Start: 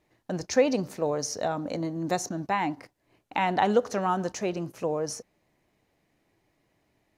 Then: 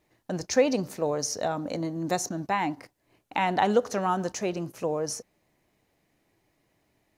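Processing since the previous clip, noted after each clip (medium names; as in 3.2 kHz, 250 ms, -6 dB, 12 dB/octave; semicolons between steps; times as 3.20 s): treble shelf 7 kHz +5.5 dB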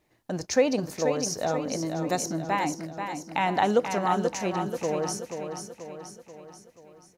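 feedback delay 484 ms, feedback 52%, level -7 dB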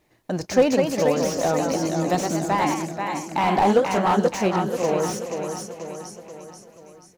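ever faster or slower copies 235 ms, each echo +1 st, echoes 2, each echo -6 dB; slew-rate limiter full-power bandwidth 90 Hz; trim +5 dB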